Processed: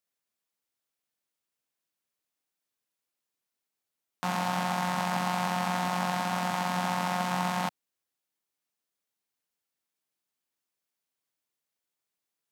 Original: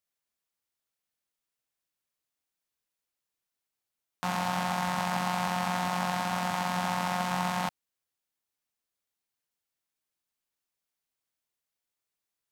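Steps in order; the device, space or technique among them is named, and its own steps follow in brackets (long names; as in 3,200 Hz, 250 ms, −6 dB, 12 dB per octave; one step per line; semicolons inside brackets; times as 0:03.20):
filter by subtraction (in parallel: low-pass filter 220 Hz 12 dB per octave + polarity inversion)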